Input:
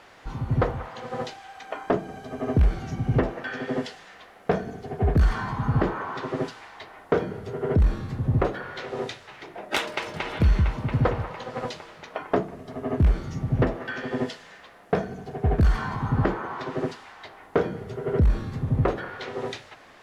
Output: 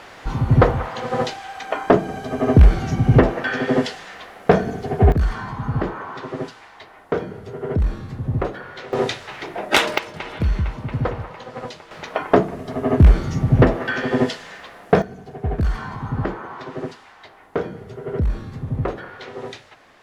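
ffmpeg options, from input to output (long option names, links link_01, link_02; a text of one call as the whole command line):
ffmpeg -i in.wav -af "asetnsamples=nb_out_samples=441:pad=0,asendcmd='5.12 volume volume 0dB;8.93 volume volume 10dB;9.98 volume volume -0.5dB;11.91 volume volume 9dB;15.02 volume volume -1dB',volume=9.5dB" out.wav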